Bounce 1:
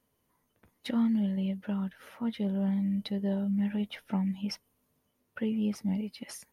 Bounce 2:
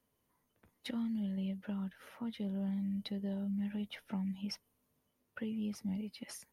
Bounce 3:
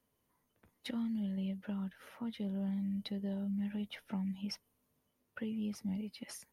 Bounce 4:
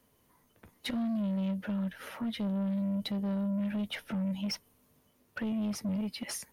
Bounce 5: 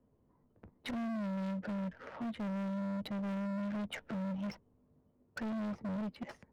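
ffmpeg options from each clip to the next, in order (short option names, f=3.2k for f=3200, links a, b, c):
-filter_complex "[0:a]acrossover=split=160|3000[a][b][c];[b]acompressor=threshold=-36dB:ratio=4[d];[a][d][c]amix=inputs=3:normalize=0,volume=-4dB"
-af anull
-filter_complex "[0:a]asplit=2[a][b];[b]alimiter=level_in=11.5dB:limit=-24dB:level=0:latency=1,volume=-11.5dB,volume=-2dB[c];[a][c]amix=inputs=2:normalize=0,asoftclip=type=tanh:threshold=-35dB,volume=6dB"
-af "adynamicsmooth=sensitivity=5.5:basefreq=670,asoftclip=type=hard:threshold=-37dB,volume=1dB"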